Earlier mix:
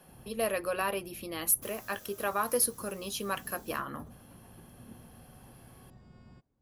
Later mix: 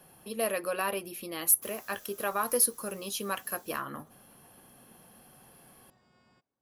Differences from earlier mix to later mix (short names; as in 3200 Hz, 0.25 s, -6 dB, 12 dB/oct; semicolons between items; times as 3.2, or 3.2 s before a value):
speech: add high shelf 8700 Hz +5 dB; background: add HPF 820 Hz 6 dB/oct